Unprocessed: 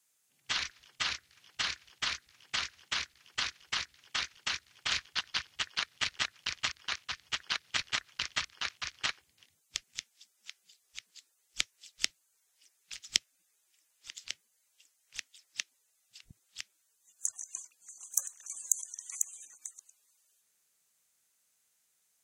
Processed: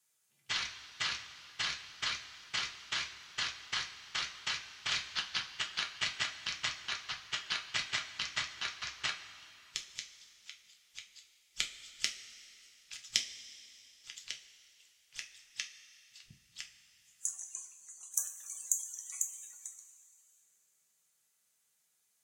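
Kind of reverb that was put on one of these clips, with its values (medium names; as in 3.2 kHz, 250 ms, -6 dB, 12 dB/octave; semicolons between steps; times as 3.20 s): two-slope reverb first 0.26 s, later 2.9 s, from -18 dB, DRR 1.5 dB; trim -4 dB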